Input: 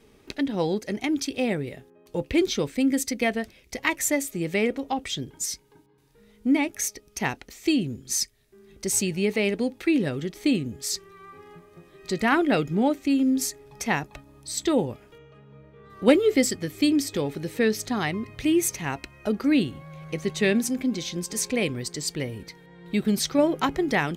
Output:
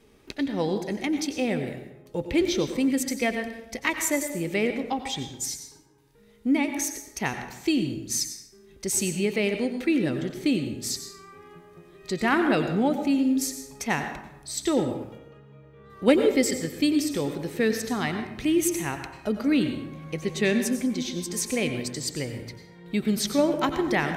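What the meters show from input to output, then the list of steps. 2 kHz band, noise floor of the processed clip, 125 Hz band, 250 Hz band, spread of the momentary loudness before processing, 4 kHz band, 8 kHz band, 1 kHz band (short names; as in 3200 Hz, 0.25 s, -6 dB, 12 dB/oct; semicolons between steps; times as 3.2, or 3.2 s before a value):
-0.5 dB, -53 dBFS, -1.0 dB, -0.5 dB, 10 LU, -1.0 dB, -1.0 dB, -0.5 dB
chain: plate-style reverb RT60 0.86 s, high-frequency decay 0.6×, pre-delay 80 ms, DRR 7 dB; gain -1.5 dB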